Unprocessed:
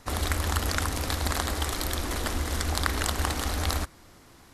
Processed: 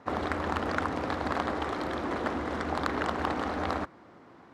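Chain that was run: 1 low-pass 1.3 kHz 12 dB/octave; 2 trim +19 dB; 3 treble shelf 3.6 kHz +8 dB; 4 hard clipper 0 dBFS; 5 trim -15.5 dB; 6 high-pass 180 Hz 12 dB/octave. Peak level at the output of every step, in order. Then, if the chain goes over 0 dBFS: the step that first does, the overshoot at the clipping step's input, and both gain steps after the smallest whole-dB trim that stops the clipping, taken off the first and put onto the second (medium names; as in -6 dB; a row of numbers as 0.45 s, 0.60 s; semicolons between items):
-11.5 dBFS, +7.5 dBFS, +8.5 dBFS, 0.0 dBFS, -15.5 dBFS, -12.0 dBFS; step 2, 8.5 dB; step 2 +10 dB, step 5 -6.5 dB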